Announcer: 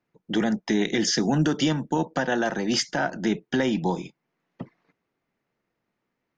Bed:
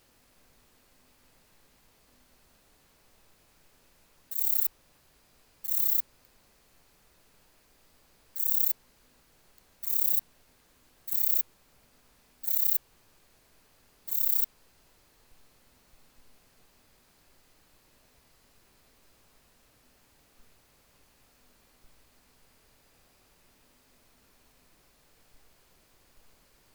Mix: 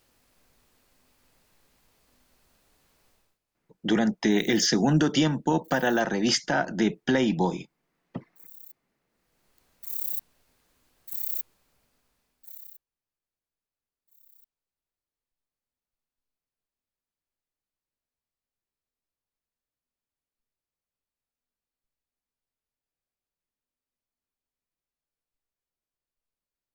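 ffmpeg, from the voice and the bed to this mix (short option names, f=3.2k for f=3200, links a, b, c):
-filter_complex "[0:a]adelay=3550,volume=0.5dB[a];[1:a]volume=14.5dB,afade=t=out:st=3.08:d=0.31:silence=0.105925,afade=t=in:st=9.07:d=0.55:silence=0.141254,afade=t=out:st=11.46:d=1.38:silence=0.0421697[b];[a][b]amix=inputs=2:normalize=0"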